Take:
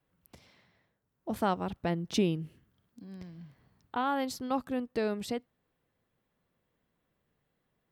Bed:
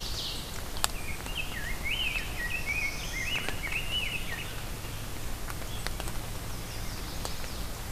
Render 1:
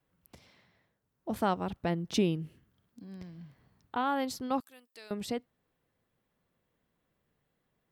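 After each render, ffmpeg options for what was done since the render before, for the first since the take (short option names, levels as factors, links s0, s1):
-filter_complex "[0:a]asettb=1/sr,asplit=3[s0][s1][s2];[s0]atrim=end=4.604[s3];[s1]atrim=start=4.6:end=5.11,asetpts=PTS-STARTPTS,afade=t=in:d=0.004:c=qsin,afade=t=out:st=0.506:d=0.004:c=qsin,aderivative[s4];[s2]atrim=start=5.106[s5];[s3][s4]acrossfade=d=0.004:c1=hsin:c2=qsin[s6];[s6][s5]acrossfade=d=0.004:c1=qsin:c2=hsin"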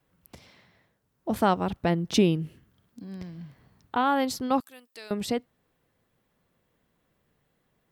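-af "volume=2.11"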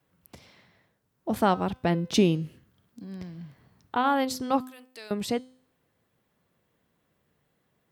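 -af "highpass=61,bandreject=f=256:t=h:w=4,bandreject=f=512:t=h:w=4,bandreject=f=768:t=h:w=4,bandreject=f=1024:t=h:w=4,bandreject=f=1280:t=h:w=4,bandreject=f=1536:t=h:w=4,bandreject=f=1792:t=h:w=4,bandreject=f=2048:t=h:w=4,bandreject=f=2304:t=h:w=4,bandreject=f=2560:t=h:w=4,bandreject=f=2816:t=h:w=4,bandreject=f=3072:t=h:w=4,bandreject=f=3328:t=h:w=4,bandreject=f=3584:t=h:w=4,bandreject=f=3840:t=h:w=4,bandreject=f=4096:t=h:w=4,bandreject=f=4352:t=h:w=4,bandreject=f=4608:t=h:w=4,bandreject=f=4864:t=h:w=4,bandreject=f=5120:t=h:w=4,bandreject=f=5376:t=h:w=4,bandreject=f=5632:t=h:w=4,bandreject=f=5888:t=h:w=4,bandreject=f=6144:t=h:w=4,bandreject=f=6400:t=h:w=4,bandreject=f=6656:t=h:w=4,bandreject=f=6912:t=h:w=4,bandreject=f=7168:t=h:w=4,bandreject=f=7424:t=h:w=4,bandreject=f=7680:t=h:w=4,bandreject=f=7936:t=h:w=4,bandreject=f=8192:t=h:w=4,bandreject=f=8448:t=h:w=4,bandreject=f=8704:t=h:w=4,bandreject=f=8960:t=h:w=4,bandreject=f=9216:t=h:w=4,bandreject=f=9472:t=h:w=4,bandreject=f=9728:t=h:w=4"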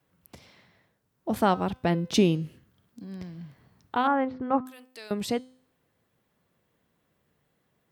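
-filter_complex "[0:a]asettb=1/sr,asplit=3[s0][s1][s2];[s0]atrim=end=4.074[s3];[s1]atrim=start=4.07:end=4.66,asetpts=PTS-STARTPTS,afade=t=in:d=0.004:c=qsin,afade=t=out:st=0.586:d=0.004:c=qsin,lowpass=f=2000:w=0.5412,lowpass=f=2000:w=1.3066[s4];[s2]atrim=start=4.656[s5];[s3][s4]acrossfade=d=0.004:c1=hsin:c2=qsin[s6];[s6][s5]acrossfade=d=0.004:c1=qsin:c2=hsin"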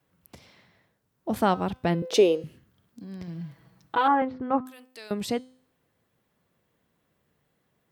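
-filter_complex "[0:a]asettb=1/sr,asplit=3[s0][s1][s2];[s0]atrim=end=2.024[s3];[s1]atrim=start=2.02:end=2.44,asetpts=PTS-STARTPTS,afade=t=in:d=0.004:c=qsin,afade=t=out:st=0.416:d=0.004:c=qsin,highpass=f=480:t=q:w=5.1[s4];[s2]atrim=start=2.436[s5];[s3][s4]acrossfade=d=0.004:c1=hsin:c2=qsin[s6];[s6][s5]acrossfade=d=0.004:c1=qsin:c2=hsin,asettb=1/sr,asplit=3[s7][s8][s9];[s7]atrim=end=3.274[s10];[s8]atrim=start=3.27:end=4.22,asetpts=PTS-STARTPTS,afade=t=in:d=0.004:c=qsin,afade=t=out:st=0.946:d=0.004:c=qsin,aecho=1:1:6.1:0.86,atrim=end_sample=41895[s11];[s9]atrim=start=4.216[s12];[s10][s11]acrossfade=d=0.004:c1=hsin:c2=qsin[s13];[s13][s12]acrossfade=d=0.004:c1=qsin:c2=hsin"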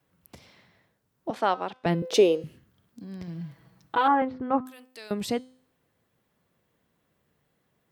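-filter_complex "[0:a]asettb=1/sr,asplit=3[s0][s1][s2];[s0]atrim=end=1.304[s3];[s1]atrim=start=1.3:end=1.86,asetpts=PTS-STARTPTS,afade=t=in:d=0.004:c=qsin,afade=t=out:st=0.556:d=0.004:c=qsin,highpass=460,lowpass=5300[s4];[s2]atrim=start=1.856[s5];[s3][s4]acrossfade=d=0.004:c1=hsin:c2=qsin[s6];[s6][s5]acrossfade=d=0.004:c1=qsin:c2=hsin"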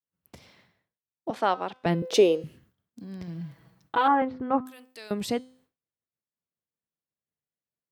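-af "agate=range=0.0224:threshold=0.00178:ratio=3:detection=peak"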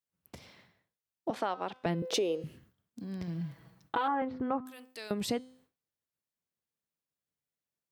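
-af "alimiter=limit=0.141:level=0:latency=1:release=306,acompressor=threshold=0.0355:ratio=2.5"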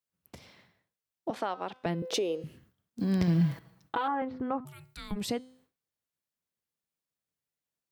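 -filter_complex "[0:a]asplit=3[s0][s1][s2];[s0]afade=t=out:st=4.64:d=0.02[s3];[s1]afreqshift=-400,afade=t=in:st=4.64:d=0.02,afade=t=out:st=5.15:d=0.02[s4];[s2]afade=t=in:st=5.15:d=0.02[s5];[s3][s4][s5]amix=inputs=3:normalize=0,asplit=3[s6][s7][s8];[s6]atrim=end=2.992[s9];[s7]atrim=start=2.988:end=3.592,asetpts=PTS-STARTPTS,volume=3.98[s10];[s8]atrim=start=3.588[s11];[s9][s10]acrossfade=d=0.004:c1=hsin:c2=hsin[s12];[s12][s11]acrossfade=d=0.004:c1=hsin:c2=hsin"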